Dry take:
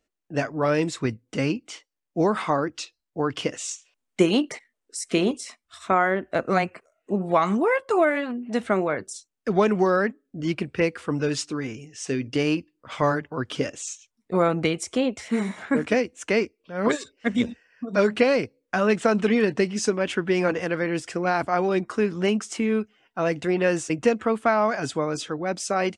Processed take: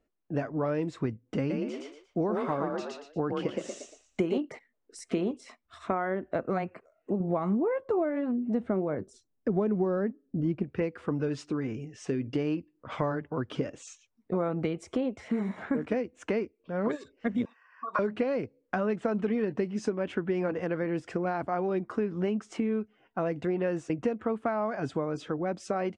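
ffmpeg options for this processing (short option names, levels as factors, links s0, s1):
-filter_complex "[0:a]asettb=1/sr,asplit=3[s0][s1][s2];[s0]atrim=end=1.384[s3];[s1]atrim=start=1.38:end=4.38,asetpts=PTS-STARTPTS,afade=t=in:d=0.004:c=qsin,afade=t=out:st=2.996:d=0.004:c=qsin,asplit=5[s4][s5][s6][s7][s8];[s5]adelay=117,afreqshift=35,volume=0.668[s9];[s6]adelay=234,afreqshift=70,volume=0.221[s10];[s7]adelay=351,afreqshift=105,volume=0.0724[s11];[s8]adelay=468,afreqshift=140,volume=0.024[s12];[s4][s9][s10][s11][s12]amix=inputs=5:normalize=0,atrim=end_sample=132300[s13];[s2]atrim=start=4.376[s14];[s3][s13]acrossfade=d=0.004:c1=hsin:c2=qsin[s15];[s15][s14]acrossfade=d=0.004:c1=qsin:c2=hsin,asettb=1/sr,asplit=3[s16][s17][s18];[s16]atrim=end=7.204[s19];[s17]atrim=start=7.2:end=10.64,asetpts=PTS-STARTPTS,afade=t=in:d=0.004:c=qsin,afade=t=out:st=3.436:d=0.004:c=qsin,tiltshelf=f=720:g=6[s20];[s18]atrim=start=10.636[s21];[s19][s20]acrossfade=d=0.004:c1=hsin:c2=qsin[s22];[s22][s21]acrossfade=d=0.004:c1=qsin:c2=hsin,asettb=1/sr,asplit=3[s23][s24][s25];[s23]atrim=end=17.454[s26];[s24]atrim=start=17.45:end=17.99,asetpts=PTS-STARTPTS,afade=t=in:d=0.004:c=qsin,afade=t=out:st=0.536:d=0.004:c=qsin,highpass=f=1100:t=q:w=12[s27];[s25]atrim=start=17.986[s28];[s26][s27]acrossfade=d=0.004:c1=hsin:c2=qsin[s29];[s29][s28]acrossfade=d=0.004:c1=qsin:c2=hsin,lowpass=f=2000:p=1,tiltshelf=f=1300:g=3.5,acompressor=threshold=0.0355:ratio=3"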